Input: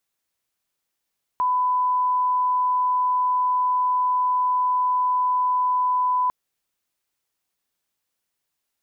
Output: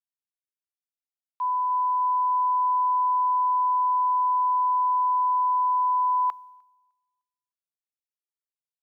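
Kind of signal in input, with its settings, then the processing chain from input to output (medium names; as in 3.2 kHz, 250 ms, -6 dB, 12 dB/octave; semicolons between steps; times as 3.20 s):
line-up tone -18 dBFS 4.90 s
high-pass 960 Hz 12 dB/octave; feedback delay 304 ms, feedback 57%, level -23 dB; three bands expanded up and down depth 100%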